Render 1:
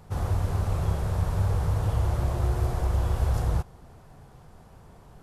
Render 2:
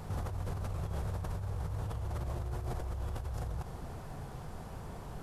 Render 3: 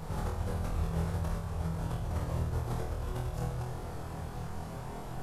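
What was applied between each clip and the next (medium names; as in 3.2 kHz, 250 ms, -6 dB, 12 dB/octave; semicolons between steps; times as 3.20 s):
compressor with a negative ratio -33 dBFS, ratio -1; peak limiter -27 dBFS, peak gain reduction 9 dB; trim -1.5 dB
flange 0.59 Hz, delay 5.9 ms, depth 7.5 ms, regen +69%; on a send: flutter echo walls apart 4.2 m, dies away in 0.5 s; on the sum: trim +5.5 dB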